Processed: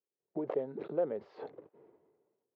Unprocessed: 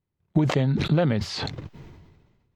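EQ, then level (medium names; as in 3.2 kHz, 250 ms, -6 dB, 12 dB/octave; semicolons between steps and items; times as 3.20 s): ladder band-pass 510 Hz, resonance 55%; 0.0 dB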